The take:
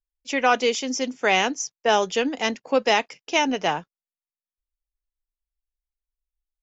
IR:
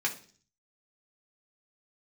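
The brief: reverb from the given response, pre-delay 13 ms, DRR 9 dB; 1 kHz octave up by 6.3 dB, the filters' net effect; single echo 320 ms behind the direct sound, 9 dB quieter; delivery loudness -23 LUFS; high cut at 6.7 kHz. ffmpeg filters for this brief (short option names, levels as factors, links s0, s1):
-filter_complex "[0:a]lowpass=6700,equalizer=f=1000:t=o:g=8.5,aecho=1:1:320:0.355,asplit=2[s0][s1];[1:a]atrim=start_sample=2205,adelay=13[s2];[s1][s2]afir=irnorm=-1:irlink=0,volume=0.158[s3];[s0][s3]amix=inputs=2:normalize=0,volume=0.596"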